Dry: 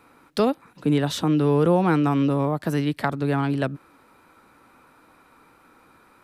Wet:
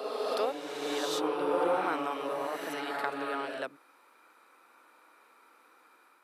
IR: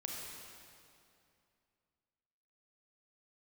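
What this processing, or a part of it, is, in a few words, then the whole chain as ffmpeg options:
ghost voice: -filter_complex "[0:a]areverse[link_01];[1:a]atrim=start_sample=2205[link_02];[link_01][link_02]afir=irnorm=-1:irlink=0,areverse,highpass=frequency=430:width=0.5412,highpass=frequency=430:width=1.3066,asubboost=boost=5.5:cutoff=200,volume=-3.5dB"

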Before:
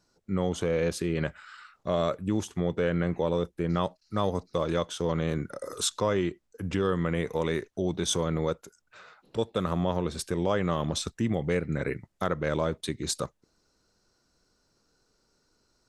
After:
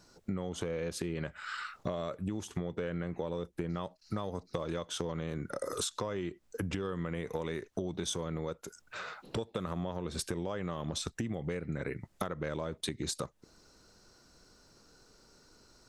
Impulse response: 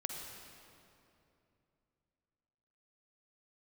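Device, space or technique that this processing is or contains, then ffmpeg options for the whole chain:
serial compression, leveller first: -af "acompressor=threshold=-33dB:ratio=2,acompressor=threshold=-42dB:ratio=6,volume=9dB"

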